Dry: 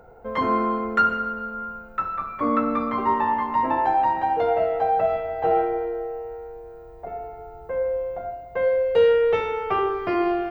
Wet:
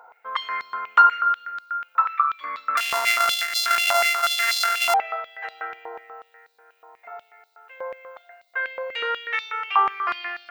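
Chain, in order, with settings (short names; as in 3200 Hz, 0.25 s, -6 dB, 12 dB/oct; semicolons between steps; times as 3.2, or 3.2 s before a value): 2.77–4.94 sample sorter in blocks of 64 samples; stepped high-pass 8.2 Hz 990–4100 Hz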